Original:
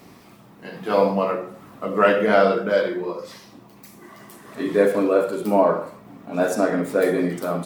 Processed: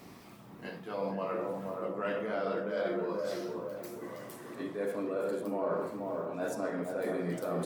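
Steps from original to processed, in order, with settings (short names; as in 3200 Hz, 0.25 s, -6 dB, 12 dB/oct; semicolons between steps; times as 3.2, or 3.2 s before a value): reverse; compressor 6:1, threshold -28 dBFS, peak gain reduction 16.5 dB; reverse; dark delay 0.475 s, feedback 46%, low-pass 1200 Hz, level -3 dB; gain -4.5 dB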